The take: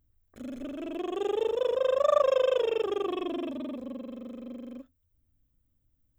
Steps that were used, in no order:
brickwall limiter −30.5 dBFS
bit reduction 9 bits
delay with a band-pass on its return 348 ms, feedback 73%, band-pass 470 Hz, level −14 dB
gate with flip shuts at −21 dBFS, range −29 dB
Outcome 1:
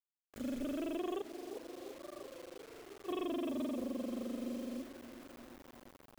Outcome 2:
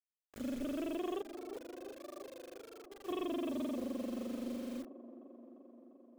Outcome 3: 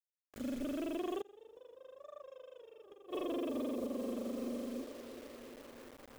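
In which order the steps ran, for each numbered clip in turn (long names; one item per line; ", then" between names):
gate with flip, then delay with a band-pass on its return, then bit reduction, then brickwall limiter
gate with flip, then bit reduction, then delay with a band-pass on its return, then brickwall limiter
delay with a band-pass on its return, then bit reduction, then gate with flip, then brickwall limiter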